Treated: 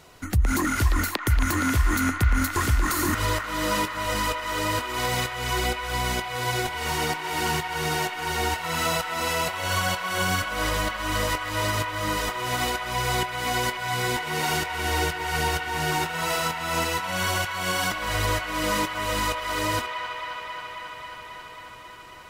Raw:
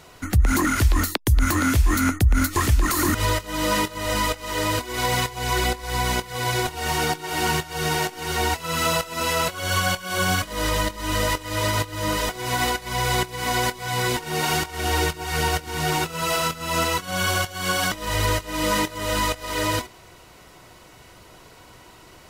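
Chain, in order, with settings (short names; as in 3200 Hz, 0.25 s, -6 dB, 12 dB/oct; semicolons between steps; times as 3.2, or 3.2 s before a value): band-limited delay 0.27 s, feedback 81%, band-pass 1500 Hz, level -5.5 dB; gain -3.5 dB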